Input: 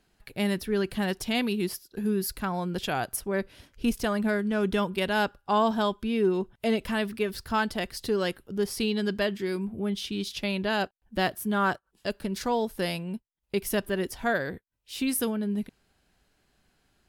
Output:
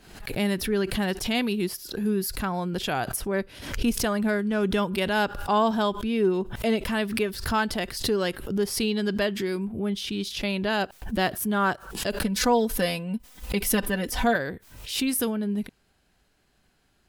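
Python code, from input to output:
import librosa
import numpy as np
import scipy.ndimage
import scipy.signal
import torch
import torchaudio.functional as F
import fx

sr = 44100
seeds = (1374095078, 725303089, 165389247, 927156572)

y = fx.comb(x, sr, ms=4.0, depth=0.78, at=(12.22, 14.36))
y = fx.pre_swell(y, sr, db_per_s=79.0)
y = y * librosa.db_to_amplitude(1.5)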